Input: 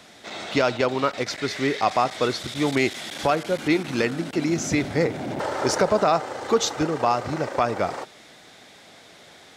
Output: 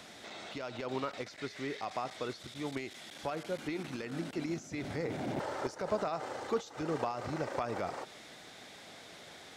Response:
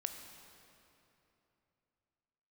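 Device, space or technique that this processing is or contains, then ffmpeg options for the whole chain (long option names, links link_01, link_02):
de-esser from a sidechain: -filter_complex "[0:a]asplit=2[link_01][link_02];[link_02]highpass=5400,apad=whole_len=421884[link_03];[link_01][link_03]sidechaincompress=threshold=-55dB:ratio=4:attack=0.79:release=93"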